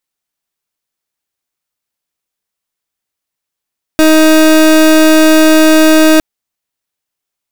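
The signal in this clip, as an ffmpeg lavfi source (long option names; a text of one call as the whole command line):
ffmpeg -f lavfi -i "aevalsrc='0.531*(2*lt(mod(314*t,1),0.3)-1)':duration=2.21:sample_rate=44100" out.wav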